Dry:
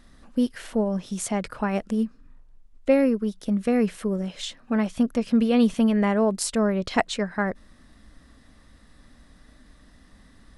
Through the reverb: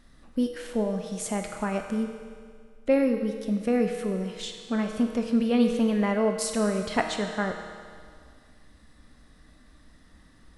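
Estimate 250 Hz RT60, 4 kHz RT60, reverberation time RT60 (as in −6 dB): 2.0 s, 1.9 s, 2.0 s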